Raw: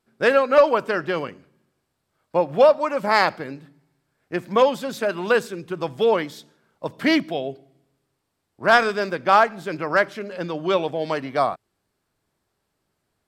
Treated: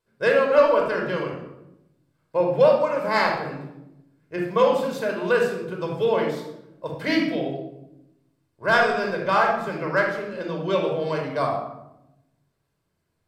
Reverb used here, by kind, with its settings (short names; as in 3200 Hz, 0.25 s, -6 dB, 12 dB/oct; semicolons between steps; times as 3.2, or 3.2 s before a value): shoebox room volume 2800 m³, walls furnished, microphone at 5.1 m; gain -7 dB